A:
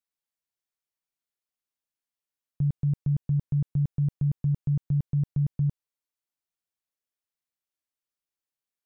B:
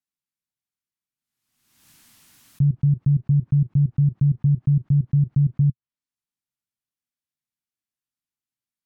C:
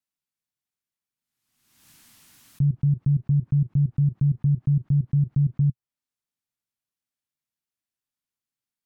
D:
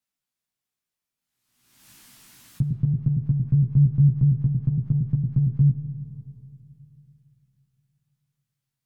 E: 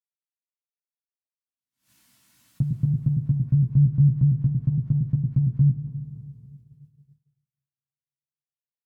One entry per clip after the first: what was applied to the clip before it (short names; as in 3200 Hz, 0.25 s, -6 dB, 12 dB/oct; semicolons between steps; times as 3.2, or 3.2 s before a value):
treble ducked by the level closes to 410 Hz, closed at -24 dBFS; ten-band EQ 125 Hz +9 dB, 250 Hz +7 dB, 500 Hz -11 dB; backwards sustainer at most 54 dB/s; gain -2 dB
limiter -15.5 dBFS, peak gain reduction 3.5 dB
chorus 0.51 Hz, delay 15.5 ms, depth 2.5 ms; on a send at -12 dB: reverb RT60 2.9 s, pre-delay 60 ms; on the sum: gain +6.5 dB
notch comb 410 Hz; feedback echo 0.283 s, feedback 52%, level -18 dB; expander -45 dBFS